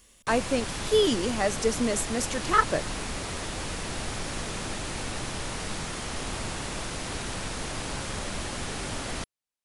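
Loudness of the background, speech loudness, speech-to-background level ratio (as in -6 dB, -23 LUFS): -33.5 LUFS, -26.5 LUFS, 7.0 dB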